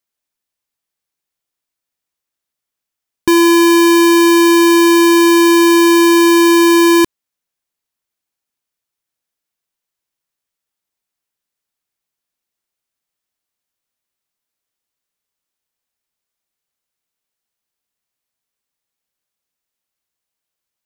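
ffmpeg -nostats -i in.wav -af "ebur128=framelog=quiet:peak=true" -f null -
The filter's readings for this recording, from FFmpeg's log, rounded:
Integrated loudness:
  I:          -9.0 LUFS
  Threshold: -19.1 LUFS
Loudness range:
  LRA:         9.7 LU
  Threshold: -31.2 LUFS
  LRA low:   -18.3 LUFS
  LRA high:   -8.6 LUFS
True peak:
  Peak:       -6.3 dBFS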